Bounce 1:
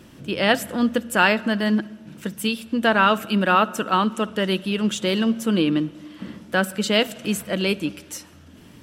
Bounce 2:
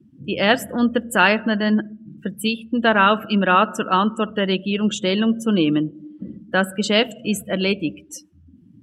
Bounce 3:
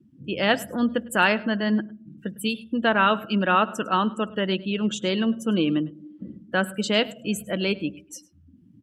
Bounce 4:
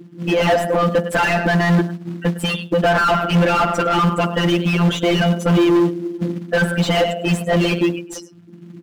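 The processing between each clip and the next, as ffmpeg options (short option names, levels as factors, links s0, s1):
-af "afftdn=nr=31:nf=-35,volume=1.26"
-af "aecho=1:1:104:0.0794,volume=0.596"
-filter_complex "[0:a]afftfilt=real='hypot(re,im)*cos(PI*b)':imag='0':win_size=1024:overlap=0.75,acrusher=bits=6:mode=log:mix=0:aa=0.000001,asplit=2[s0][s1];[s1]highpass=f=720:p=1,volume=70.8,asoftclip=type=tanh:threshold=0.562[s2];[s0][s2]amix=inputs=2:normalize=0,lowpass=f=1000:p=1,volume=0.501"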